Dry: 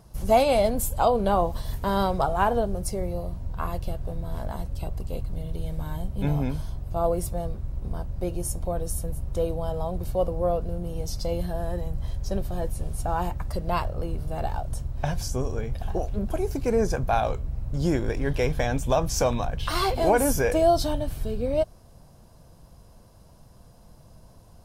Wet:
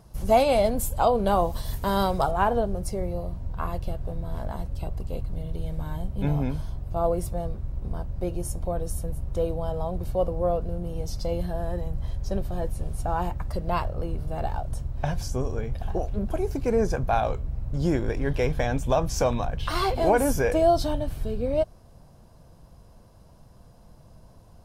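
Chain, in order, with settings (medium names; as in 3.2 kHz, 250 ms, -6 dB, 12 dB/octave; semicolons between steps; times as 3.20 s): treble shelf 4.2 kHz -2 dB, from 1.27 s +5 dB, from 2.31 s -5.5 dB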